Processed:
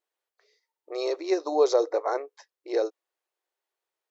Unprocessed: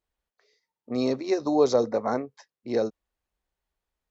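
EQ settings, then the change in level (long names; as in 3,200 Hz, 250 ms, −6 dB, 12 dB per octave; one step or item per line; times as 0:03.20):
linear-phase brick-wall high-pass 310 Hz
0.0 dB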